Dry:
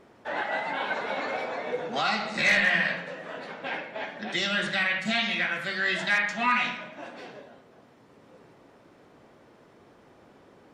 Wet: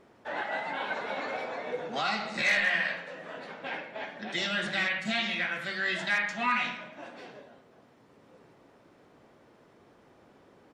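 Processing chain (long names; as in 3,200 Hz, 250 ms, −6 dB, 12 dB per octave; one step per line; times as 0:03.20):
0:02.42–0:03.14: parametric band 77 Hz −12.5 dB 2.6 octaves
0:03.95–0:04.46: delay throw 420 ms, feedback 45%, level −7.5 dB
level −3.5 dB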